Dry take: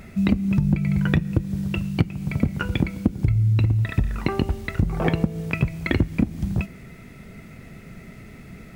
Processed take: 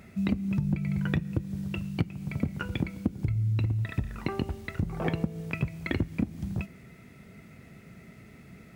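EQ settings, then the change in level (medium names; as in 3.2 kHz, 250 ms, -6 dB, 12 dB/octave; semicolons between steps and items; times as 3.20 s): high-pass 64 Hz; -7.5 dB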